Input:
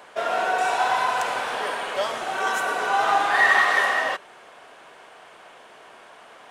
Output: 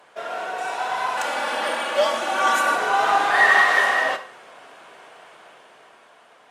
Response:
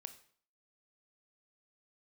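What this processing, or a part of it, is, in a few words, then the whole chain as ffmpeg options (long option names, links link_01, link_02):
far-field microphone of a smart speaker: -filter_complex "[0:a]asettb=1/sr,asplit=3[link_01][link_02][link_03];[link_01]atrim=end=1.174[link_04];[link_02]atrim=start=1.17:end=2.76,asetpts=PTS-STARTPTS,afade=type=in:duration=0.004:curve=qsin,afade=type=out:start_time=1.586:duration=0.004:curve=qsin,aecho=1:1:3.5:0.98,atrim=end_sample=70119[link_05];[link_03]atrim=start=2.756[link_06];[link_04][link_05]acrossfade=duration=0.004:curve1=hsin:curve2=qsin[link_07];[link_07][link_06]acrossfade=duration=0.004:curve1=qsin:curve2=hsin[link_08];[1:a]atrim=start_sample=2205[link_09];[link_08][link_09]afir=irnorm=-1:irlink=0,highpass=frequency=96:width=0.5412,highpass=frequency=96:width=1.3066,dynaudnorm=framelen=300:gausssize=9:maxgain=8dB" -ar 48000 -c:a libopus -b:a 48k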